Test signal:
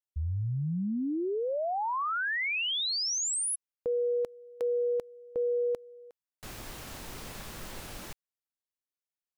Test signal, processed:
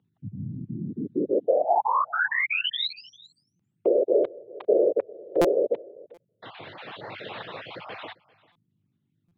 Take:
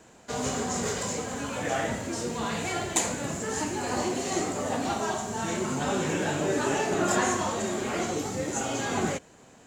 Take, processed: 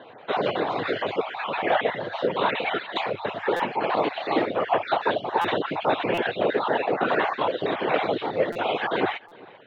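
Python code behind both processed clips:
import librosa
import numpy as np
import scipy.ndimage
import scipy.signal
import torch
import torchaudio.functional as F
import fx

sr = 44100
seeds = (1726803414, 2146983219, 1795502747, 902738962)

p1 = fx.spec_dropout(x, sr, seeds[0], share_pct=28)
p2 = fx.add_hum(p1, sr, base_hz=50, snr_db=34)
p3 = fx.dereverb_blind(p2, sr, rt60_s=0.67)
p4 = fx.low_shelf_res(p3, sr, hz=330.0, db=-8.5, q=1.5)
p5 = fx.rider(p4, sr, range_db=3, speed_s=0.5)
p6 = fx.whisperise(p5, sr, seeds[1])
p7 = scipy.signal.sosfilt(scipy.signal.cheby1(5, 1.0, [100.0, 3800.0], 'bandpass', fs=sr, output='sos'), p6)
p8 = p7 + fx.echo_single(p7, sr, ms=396, db=-23.0, dry=0)
p9 = fx.buffer_glitch(p8, sr, at_s=(3.56, 5.41, 6.14, 8.52, 9.28), block=256, repeats=5)
y = p9 * 10.0 ** (8.0 / 20.0)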